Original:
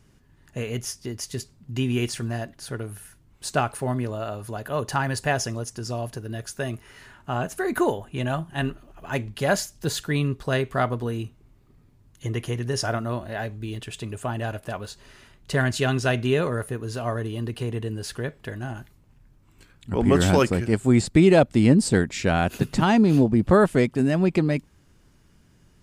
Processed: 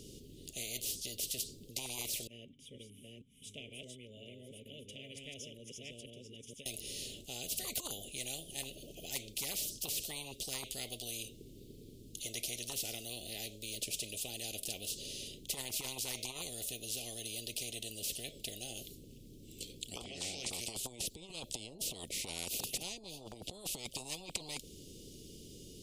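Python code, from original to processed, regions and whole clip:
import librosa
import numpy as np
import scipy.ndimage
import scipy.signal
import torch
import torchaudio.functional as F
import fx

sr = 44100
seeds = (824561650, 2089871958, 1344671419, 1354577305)

y = fx.chain(x, sr, fx.reverse_delay(ms=474, wet_db=-2),
    fx.vowel_filter(vowel='i'),
    fx.fixed_phaser(hz=1200.0, stages=6), at=(2.27, 6.66))
y = fx.chain(y, sr, fx.bandpass_edges(low_hz=110.0, high_hz=4000.0),
    fx.over_compress(threshold_db=-27.0, ratio=-1.0),
    fx.doubler(ms=35.0, db=-7.0), at=(20.04, 20.5))
y = scipy.signal.sosfilt(scipy.signal.ellip(3, 1.0, 50, [470.0, 3200.0], 'bandstop', fs=sr, output='sos'), y)
y = fx.over_compress(y, sr, threshold_db=-25.0, ratio=-0.5)
y = fx.spectral_comp(y, sr, ratio=10.0)
y = y * 10.0 ** (-5.0 / 20.0)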